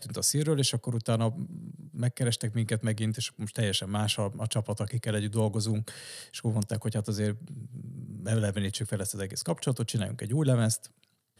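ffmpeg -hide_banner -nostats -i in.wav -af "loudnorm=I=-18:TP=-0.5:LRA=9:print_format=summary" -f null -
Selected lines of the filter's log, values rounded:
Input Integrated:    -30.2 LUFS
Input True Peak:     -12.7 dBTP
Input LRA:             1.9 LU
Input Threshold:     -40.6 LUFS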